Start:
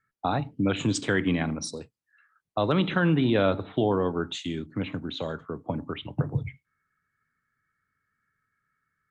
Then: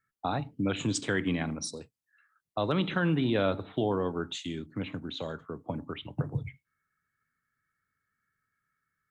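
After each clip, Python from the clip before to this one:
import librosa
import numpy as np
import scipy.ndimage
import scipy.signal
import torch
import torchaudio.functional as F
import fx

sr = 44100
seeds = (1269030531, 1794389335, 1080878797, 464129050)

y = fx.high_shelf(x, sr, hz=5600.0, db=5.5)
y = y * librosa.db_to_amplitude(-4.5)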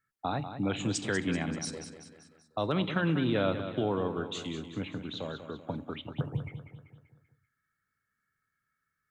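y = fx.echo_feedback(x, sr, ms=193, feedback_pct=49, wet_db=-10)
y = y * librosa.db_to_amplitude(-1.5)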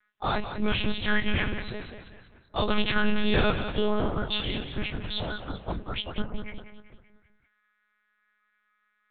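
y = fx.freq_snap(x, sr, grid_st=2)
y = fx.dynamic_eq(y, sr, hz=720.0, q=2.1, threshold_db=-47.0, ratio=4.0, max_db=-5)
y = fx.lpc_monotone(y, sr, seeds[0], pitch_hz=210.0, order=8)
y = y * librosa.db_to_amplitude(7.0)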